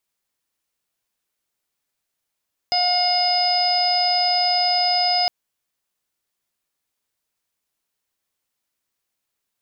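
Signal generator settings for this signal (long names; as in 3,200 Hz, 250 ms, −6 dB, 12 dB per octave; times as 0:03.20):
steady harmonic partials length 2.56 s, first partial 718 Hz, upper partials −19/−11/−13/−18/−13.5/1 dB, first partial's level −20 dB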